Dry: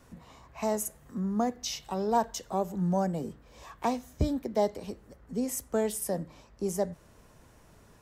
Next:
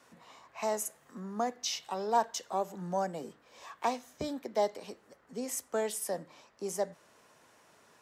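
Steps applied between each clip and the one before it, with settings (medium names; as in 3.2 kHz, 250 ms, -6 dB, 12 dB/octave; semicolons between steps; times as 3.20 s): frequency weighting A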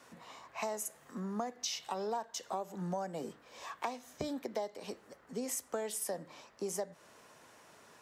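compression 8:1, threshold -37 dBFS, peak gain reduction 15.5 dB; trim +3 dB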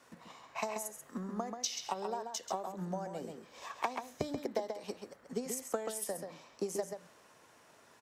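transient shaper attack +8 dB, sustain +3 dB; echo from a far wall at 23 m, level -6 dB; trim -4 dB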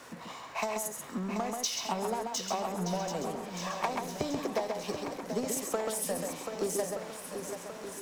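power-law waveshaper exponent 0.7; shuffle delay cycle 1224 ms, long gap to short 1.5:1, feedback 47%, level -8 dB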